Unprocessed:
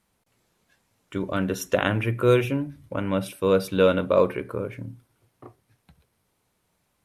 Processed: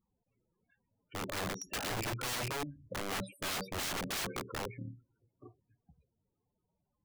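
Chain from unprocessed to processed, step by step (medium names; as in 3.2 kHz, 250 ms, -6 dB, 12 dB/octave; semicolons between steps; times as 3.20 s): loudest bins only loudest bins 16; integer overflow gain 24 dB; trim -7.5 dB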